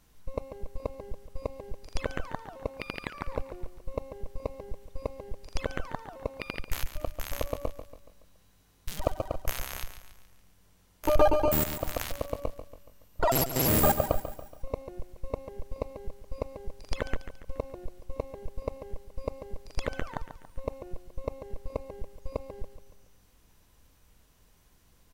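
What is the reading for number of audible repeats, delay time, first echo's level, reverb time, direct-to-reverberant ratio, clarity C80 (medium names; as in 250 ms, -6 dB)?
4, 141 ms, -11.0 dB, no reverb, no reverb, no reverb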